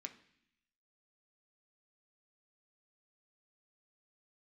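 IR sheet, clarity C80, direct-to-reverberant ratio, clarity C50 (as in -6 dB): 17.0 dB, 4.5 dB, 13.5 dB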